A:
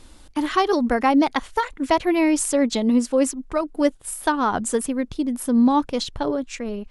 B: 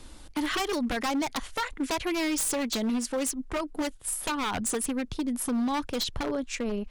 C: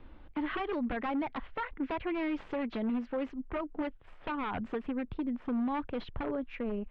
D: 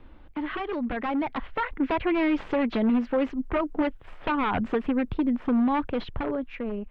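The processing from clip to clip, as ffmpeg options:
-filter_complex "[0:a]acrossover=split=110|1400[s0][s1][s2];[s1]acompressor=threshold=0.0501:ratio=8[s3];[s0][s3][s2]amix=inputs=3:normalize=0,aeval=exprs='0.0708*(abs(mod(val(0)/0.0708+3,4)-2)-1)':c=same"
-af "lowpass=f=2900:w=0.5412,lowpass=f=2900:w=1.3066,aemphasis=mode=reproduction:type=75kf,volume=0.631"
-af "dynaudnorm=f=300:g=9:m=2.24,volume=1.33"

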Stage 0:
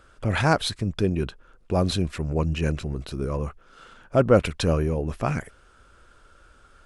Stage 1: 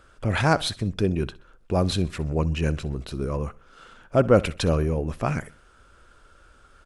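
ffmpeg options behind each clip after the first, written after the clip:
-af "aecho=1:1:64|128|192:0.0891|0.0383|0.0165"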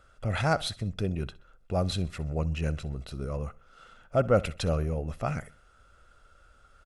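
-af "aecho=1:1:1.5:0.4,volume=0.473"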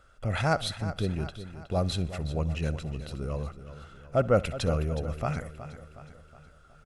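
-af "aecho=1:1:367|734|1101|1468|1835:0.224|0.112|0.056|0.028|0.014"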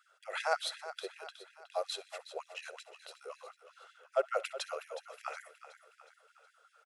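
-af "afftfilt=real='re*gte(b*sr/1024,360*pow(1600/360,0.5+0.5*sin(2*PI*5.4*pts/sr)))':imag='im*gte(b*sr/1024,360*pow(1600/360,0.5+0.5*sin(2*PI*5.4*pts/sr)))':win_size=1024:overlap=0.75,volume=0.631"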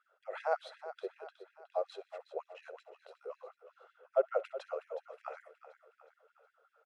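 -af "bandpass=f=440:t=q:w=0.94:csg=0,volume=1.41"

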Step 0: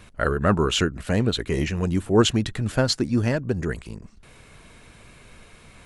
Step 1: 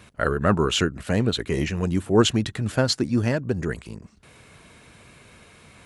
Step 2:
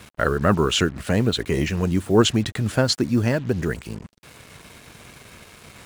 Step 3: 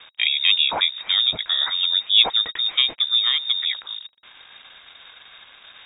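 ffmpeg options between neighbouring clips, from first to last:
-af "highpass=70"
-filter_complex "[0:a]asplit=2[s0][s1];[s1]acompressor=threshold=0.0316:ratio=4,volume=0.75[s2];[s0][s2]amix=inputs=2:normalize=0,acrusher=bits=6:mix=0:aa=0.5"
-af "lowpass=f=3200:t=q:w=0.5098,lowpass=f=3200:t=q:w=0.6013,lowpass=f=3200:t=q:w=0.9,lowpass=f=3200:t=q:w=2.563,afreqshift=-3800"

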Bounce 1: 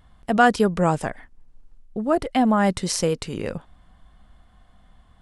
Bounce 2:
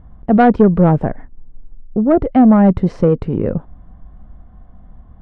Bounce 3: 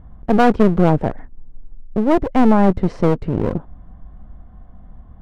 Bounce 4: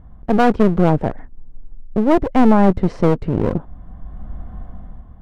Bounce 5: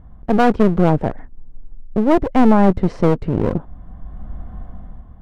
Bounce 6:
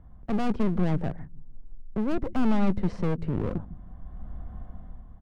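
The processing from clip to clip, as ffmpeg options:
-af "lowpass=1600,tiltshelf=f=800:g=7.5,acontrast=61"
-af "aeval=exprs='clip(val(0),-1,0.0531)':c=same"
-af "dynaudnorm=f=140:g=9:m=3.76,volume=0.891"
-af anull
-filter_complex "[0:a]acrossover=split=210[s0][s1];[s0]aecho=1:1:153|306|459:0.316|0.0885|0.0248[s2];[s1]asoftclip=type=tanh:threshold=0.1[s3];[s2][s3]amix=inputs=2:normalize=0,volume=0.398"

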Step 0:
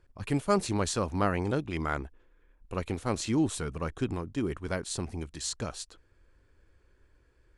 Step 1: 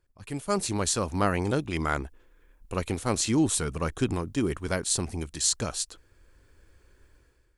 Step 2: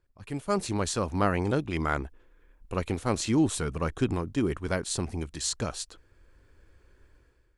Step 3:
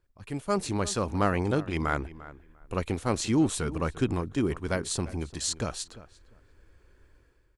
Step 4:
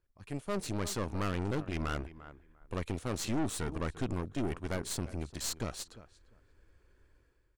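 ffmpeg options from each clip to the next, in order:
-af "highshelf=f=5600:g=11,dynaudnorm=f=130:g=7:m=5.01,volume=0.355"
-af "highshelf=f=5200:g=-9.5"
-filter_complex "[0:a]asplit=2[s0][s1];[s1]adelay=347,lowpass=f=2500:p=1,volume=0.15,asplit=2[s2][s3];[s3]adelay=347,lowpass=f=2500:p=1,volume=0.19[s4];[s0][s2][s4]amix=inputs=3:normalize=0"
-af "aeval=exprs='(tanh(25.1*val(0)+0.8)-tanh(0.8))/25.1':c=same,volume=0.891"

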